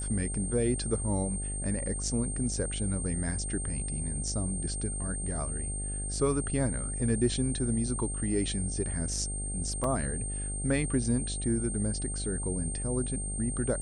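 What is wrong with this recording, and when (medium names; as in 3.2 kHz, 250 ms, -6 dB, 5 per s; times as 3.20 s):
buzz 50 Hz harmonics 16 -36 dBFS
whine 8.7 kHz -36 dBFS
9.84 s: dropout 2.7 ms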